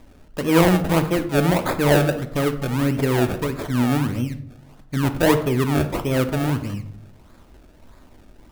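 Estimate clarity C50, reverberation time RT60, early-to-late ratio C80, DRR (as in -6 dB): 12.0 dB, 0.70 s, 16.0 dB, 8.5 dB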